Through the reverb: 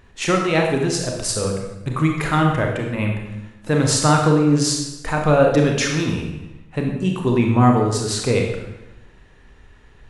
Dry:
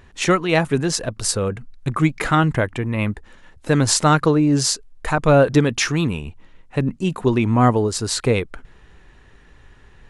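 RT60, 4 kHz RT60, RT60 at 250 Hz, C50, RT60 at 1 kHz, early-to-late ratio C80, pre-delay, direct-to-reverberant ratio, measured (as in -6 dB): 1.0 s, 0.85 s, 1.2 s, 3.0 dB, 1.0 s, 6.0 dB, 27 ms, 1.0 dB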